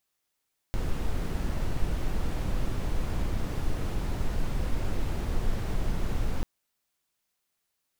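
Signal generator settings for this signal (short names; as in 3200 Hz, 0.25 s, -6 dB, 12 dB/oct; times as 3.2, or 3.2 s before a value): noise brown, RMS -26.5 dBFS 5.69 s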